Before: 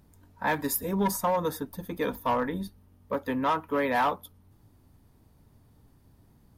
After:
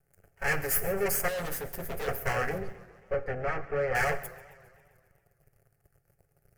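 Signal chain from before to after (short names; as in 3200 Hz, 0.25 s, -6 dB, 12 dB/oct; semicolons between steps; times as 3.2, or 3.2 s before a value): minimum comb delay 7.2 ms; notch 620 Hz, Q 12; sample leveller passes 3; in parallel at -2 dB: vocal rider 0.5 s; on the sum: fixed phaser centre 1000 Hz, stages 6; 1.28–2.08 hard clip -25.5 dBFS, distortion -10 dB; 2.58–3.95 tape spacing loss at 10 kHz 29 dB; on a send at -15 dB: reverb RT60 0.90 s, pre-delay 3 ms; on the sum: warbling echo 0.134 s, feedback 63%, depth 189 cents, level -19 dB; gain -7 dB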